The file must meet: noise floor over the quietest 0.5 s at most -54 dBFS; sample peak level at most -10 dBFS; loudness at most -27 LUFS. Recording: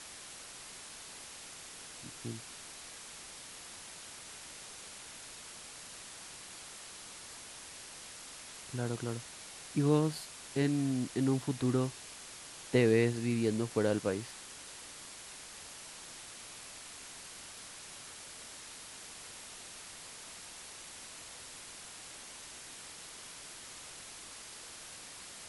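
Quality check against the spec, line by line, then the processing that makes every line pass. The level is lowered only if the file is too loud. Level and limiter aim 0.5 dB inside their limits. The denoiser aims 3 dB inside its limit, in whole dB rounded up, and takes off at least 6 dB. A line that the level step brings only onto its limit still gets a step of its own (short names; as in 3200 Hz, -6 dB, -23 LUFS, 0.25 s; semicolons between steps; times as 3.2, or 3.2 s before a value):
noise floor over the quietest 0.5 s -49 dBFS: fail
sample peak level -14.5 dBFS: OK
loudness -38.5 LUFS: OK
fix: denoiser 8 dB, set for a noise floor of -49 dBFS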